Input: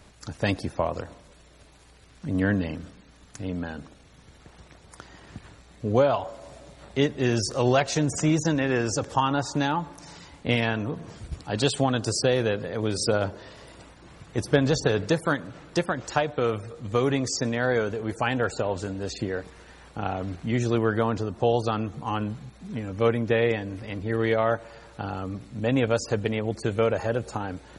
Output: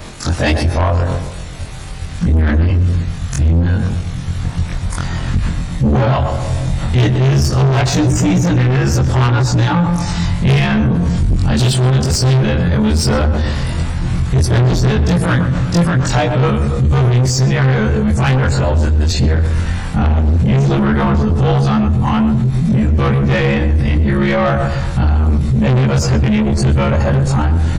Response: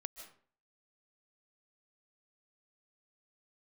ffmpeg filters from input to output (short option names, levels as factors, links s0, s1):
-filter_complex "[0:a]afftfilt=real='re':imag='-im':win_size=2048:overlap=0.75,asubboost=boost=10.5:cutoff=120,asoftclip=type=tanh:threshold=0.0447,asplit=2[s0][s1];[s1]adelay=123,lowpass=f=1500:p=1,volume=0.376,asplit=2[s2][s3];[s3]adelay=123,lowpass=f=1500:p=1,volume=0.34,asplit=2[s4][s5];[s5]adelay=123,lowpass=f=1500:p=1,volume=0.34,asplit=2[s6][s7];[s7]adelay=123,lowpass=f=1500:p=1,volume=0.34[s8];[s2][s4][s6][s8]amix=inputs=4:normalize=0[s9];[s0][s9]amix=inputs=2:normalize=0,alimiter=level_in=44.7:limit=0.891:release=50:level=0:latency=1,adynamicequalizer=threshold=0.0501:dfrequency=5500:dqfactor=0.7:tfrequency=5500:tqfactor=0.7:attack=5:release=100:ratio=0.375:range=2:mode=cutabove:tftype=highshelf,volume=0.447"